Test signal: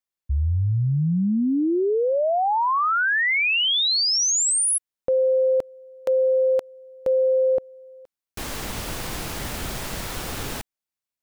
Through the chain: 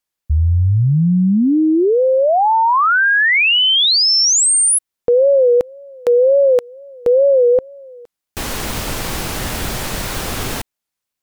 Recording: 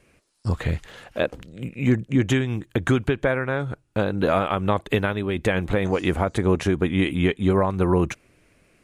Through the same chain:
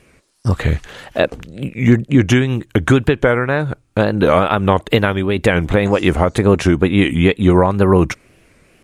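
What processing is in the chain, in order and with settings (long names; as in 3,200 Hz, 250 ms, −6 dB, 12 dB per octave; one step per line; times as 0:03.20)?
tape wow and flutter 1.9 Hz 130 cents
level +8 dB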